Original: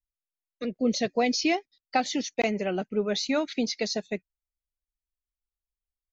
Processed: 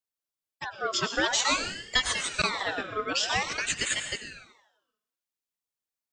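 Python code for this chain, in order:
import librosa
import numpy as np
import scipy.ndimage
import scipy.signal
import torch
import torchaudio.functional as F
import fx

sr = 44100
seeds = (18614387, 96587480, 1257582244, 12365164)

y = fx.highpass(x, sr, hz=910.0, slope=6)
y = fx.rev_plate(y, sr, seeds[0], rt60_s=0.89, hf_ratio=0.95, predelay_ms=85, drr_db=6.5)
y = fx.ring_lfo(y, sr, carrier_hz=1700.0, swing_pct=50, hz=0.5)
y = F.gain(torch.from_numpy(y), 6.0).numpy()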